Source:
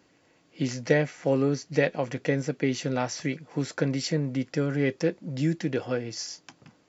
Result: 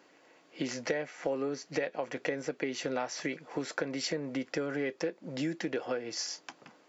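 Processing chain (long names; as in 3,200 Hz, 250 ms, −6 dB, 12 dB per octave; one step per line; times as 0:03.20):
Bessel high-pass filter 460 Hz, order 2
high-shelf EQ 2,800 Hz −7.5 dB
downward compressor 6 to 1, threshold −36 dBFS, peak gain reduction 15 dB
level +6 dB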